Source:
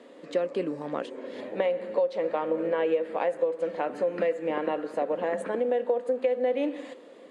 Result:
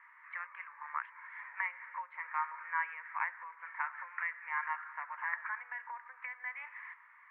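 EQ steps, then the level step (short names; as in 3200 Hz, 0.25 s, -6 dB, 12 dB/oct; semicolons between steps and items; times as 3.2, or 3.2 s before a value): Chebyshev band-pass 940–2200 Hz, order 4; tilt +4 dB/oct; +1.5 dB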